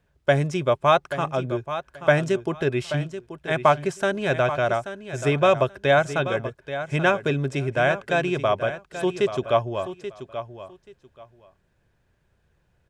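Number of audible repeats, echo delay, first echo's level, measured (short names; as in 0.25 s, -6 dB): 2, 0.832 s, -11.5 dB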